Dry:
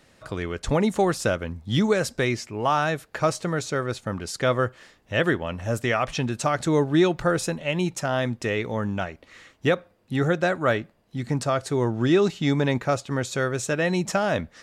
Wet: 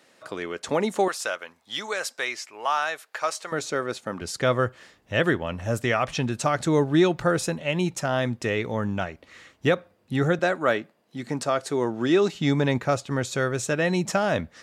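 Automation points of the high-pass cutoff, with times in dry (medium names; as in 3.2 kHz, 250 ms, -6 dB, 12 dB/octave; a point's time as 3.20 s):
280 Hz
from 1.08 s 810 Hz
from 3.52 s 230 Hz
from 4.21 s 55 Hz
from 10.39 s 220 Hz
from 12.35 s 57 Hz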